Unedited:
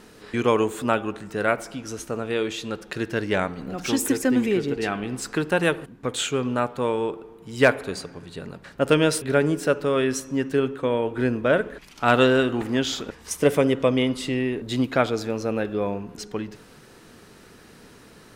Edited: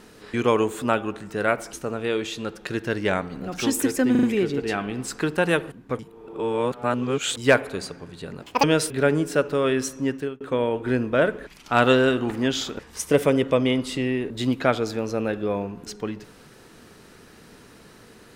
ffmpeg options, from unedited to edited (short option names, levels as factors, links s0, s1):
-filter_complex "[0:a]asplit=10[s0][s1][s2][s3][s4][s5][s6][s7][s8][s9];[s0]atrim=end=1.732[s10];[s1]atrim=start=1.988:end=4.412[s11];[s2]atrim=start=4.368:end=4.412[s12];[s3]atrim=start=4.368:end=4.412[s13];[s4]atrim=start=4.368:end=6.132[s14];[s5]atrim=start=6.128:end=7.512,asetpts=PTS-STARTPTS,areverse[s15];[s6]atrim=start=7.508:end=8.564[s16];[s7]atrim=start=8.56:end=8.95,asetpts=PTS-STARTPTS,asetrate=79821,aresample=44100,atrim=end_sample=9502,asetpts=PTS-STARTPTS[s17];[s8]atrim=start=8.946:end=10.72,asetpts=PTS-STARTPTS,afade=t=out:st=1.444:d=0.33[s18];[s9]atrim=start=10.72,asetpts=PTS-STARTPTS,afade=t=in:d=0.004:c=hsin[s19];[s10][s11]acrossfade=d=0.004:c1=hsin:c2=hsin[s20];[s20][s12]acrossfade=d=0.004:c1=hsin:c2=hsin[s21];[s21][s13]acrossfade=d=0.004:c1=hsin:c2=hsin[s22];[s22][s14]acrossfade=d=0.004:c1=hsin:c2=hsin[s23];[s23][s15]acrossfade=d=0.004:c1=hsin:c2=hsin[s24];[s24][s16]acrossfade=d=0.004:c1=hsin:c2=hsin[s25];[s25][s17]acrossfade=d=0.004:c1=hsin:c2=hsin[s26];[s18][s19]concat=n=2:v=0:a=1[s27];[s26][s27]acrossfade=d=0.004:c1=hsin:c2=hsin"